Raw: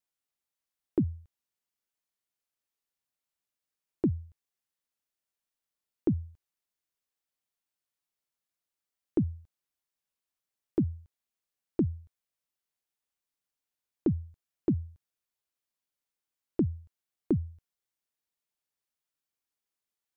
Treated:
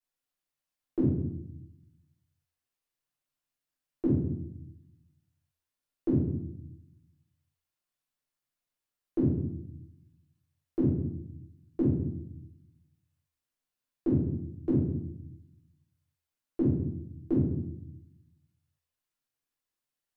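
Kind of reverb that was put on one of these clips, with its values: simulated room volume 190 m³, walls mixed, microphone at 3.3 m; trim -9.5 dB

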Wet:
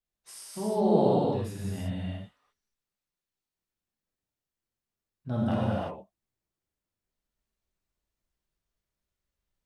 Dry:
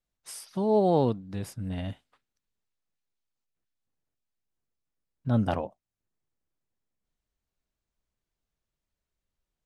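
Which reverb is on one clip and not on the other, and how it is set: gated-style reverb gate 380 ms flat, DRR -7 dB; trim -7.5 dB

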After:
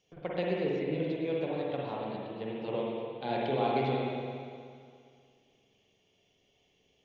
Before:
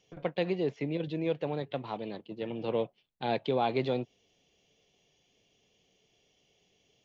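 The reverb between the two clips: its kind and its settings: spring tank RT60 2.2 s, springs 45/59 ms, chirp 70 ms, DRR -4 dB; trim -5 dB

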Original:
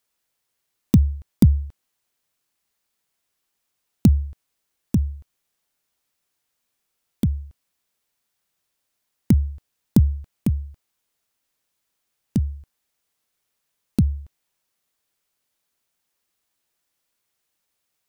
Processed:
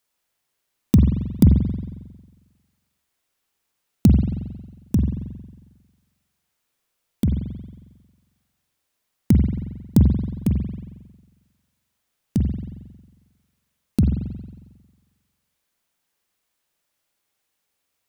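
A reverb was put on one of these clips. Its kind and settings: spring tank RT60 1.3 s, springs 45 ms, chirp 40 ms, DRR 2 dB

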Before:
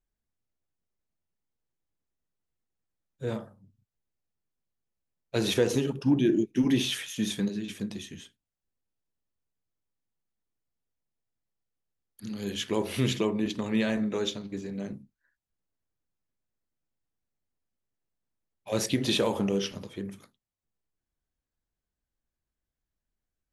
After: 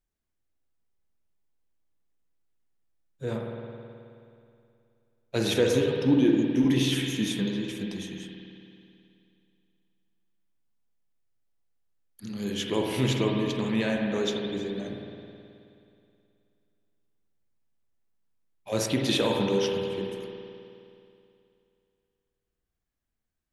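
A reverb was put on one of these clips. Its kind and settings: spring tank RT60 2.6 s, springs 53 ms, chirp 50 ms, DRR 1 dB

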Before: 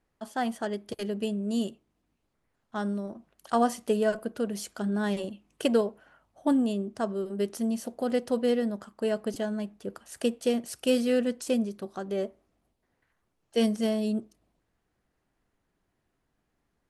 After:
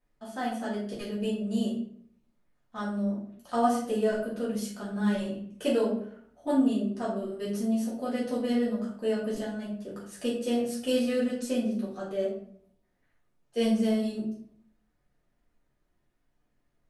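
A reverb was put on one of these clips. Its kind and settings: simulated room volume 75 m³, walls mixed, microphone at 2 m; trim -10 dB

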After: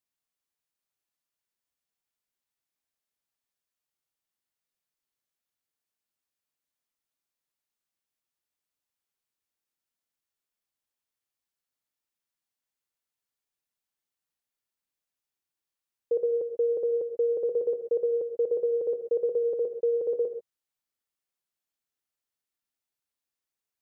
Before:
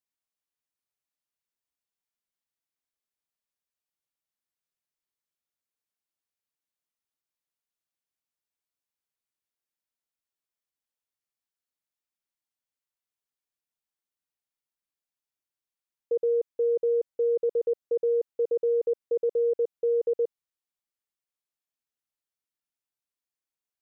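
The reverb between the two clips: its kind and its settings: gated-style reverb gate 160 ms rising, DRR 7 dB; trim +1 dB

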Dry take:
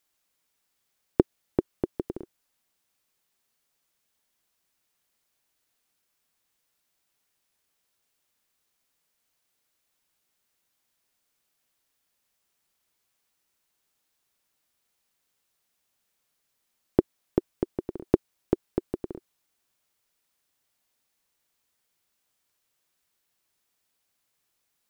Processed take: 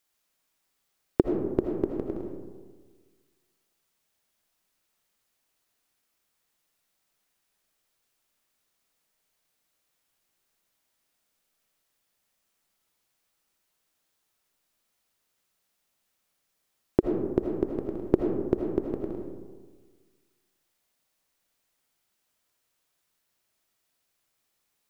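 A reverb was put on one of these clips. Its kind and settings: algorithmic reverb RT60 1.5 s, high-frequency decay 0.35×, pre-delay 40 ms, DRR 2 dB; trim -1 dB

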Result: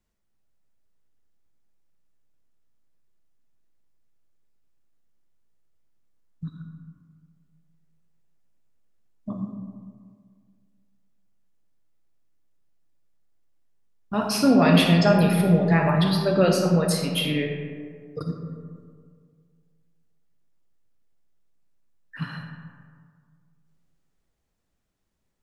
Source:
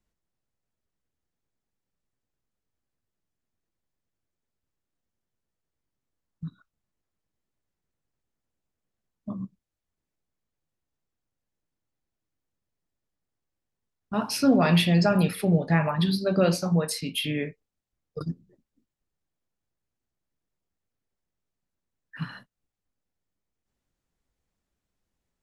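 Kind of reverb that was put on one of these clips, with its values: algorithmic reverb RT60 2 s, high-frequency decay 0.4×, pre-delay 10 ms, DRR 3 dB; trim +2 dB

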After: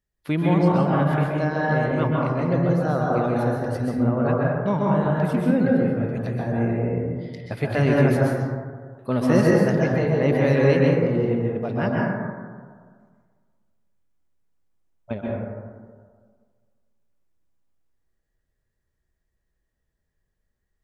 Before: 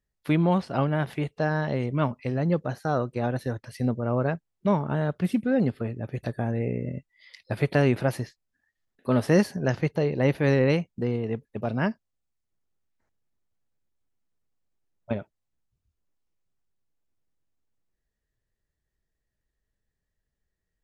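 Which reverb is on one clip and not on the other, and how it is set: plate-style reverb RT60 1.7 s, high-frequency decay 0.25×, pre-delay 115 ms, DRR -4 dB; trim -1 dB

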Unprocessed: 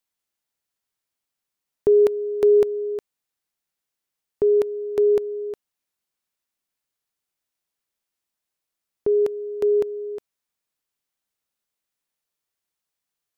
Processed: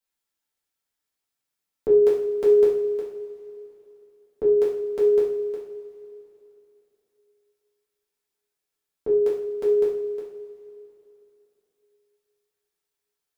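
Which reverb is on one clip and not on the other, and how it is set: two-slope reverb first 0.53 s, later 3.2 s, from -18 dB, DRR -7.5 dB; trim -8 dB

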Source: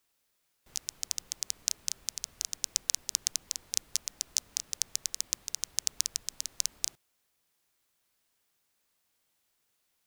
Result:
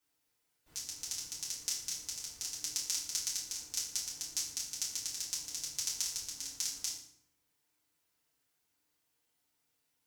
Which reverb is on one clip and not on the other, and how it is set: FDN reverb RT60 0.66 s, low-frequency decay 1.45×, high-frequency decay 0.8×, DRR -7.5 dB; trim -11 dB

